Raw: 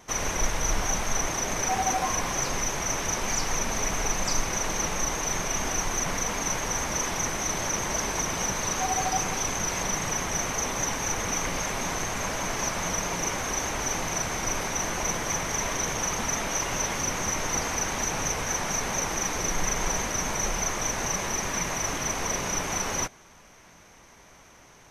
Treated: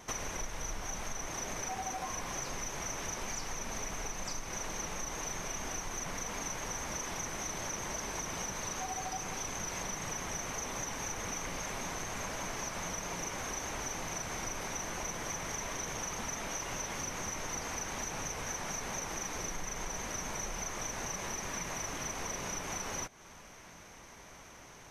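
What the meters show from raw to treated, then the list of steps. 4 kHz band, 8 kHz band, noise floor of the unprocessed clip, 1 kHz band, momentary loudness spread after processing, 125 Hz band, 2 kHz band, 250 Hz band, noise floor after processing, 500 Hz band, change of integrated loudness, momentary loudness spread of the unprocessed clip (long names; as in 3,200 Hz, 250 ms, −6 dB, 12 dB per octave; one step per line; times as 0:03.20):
−10.0 dB, −10.5 dB, −53 dBFS, −10.5 dB, 2 LU, −10.0 dB, −10.0 dB, −10.0 dB, −53 dBFS, −10.0 dB, −10.5 dB, 2 LU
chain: downward compressor, threshold −36 dBFS, peak gain reduction 16 dB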